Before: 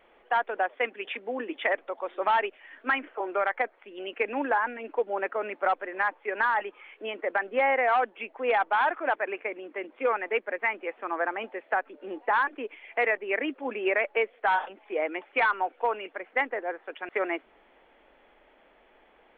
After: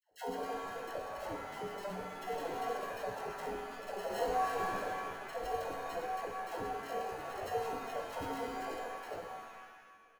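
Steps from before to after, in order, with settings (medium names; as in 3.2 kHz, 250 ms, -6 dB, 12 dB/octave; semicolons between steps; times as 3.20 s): dynamic bell 1.9 kHz, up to -6 dB, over -45 dBFS, Q 6; feedback comb 230 Hz, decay 1.1 s, mix 90%; tempo 1.9×; sample-and-hold 37×; high-order bell 700 Hz +9.5 dB; phase dispersion lows, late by 113 ms, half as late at 730 Hz; pitch-shifted reverb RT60 1.4 s, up +7 st, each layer -2 dB, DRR 3.5 dB; trim -4 dB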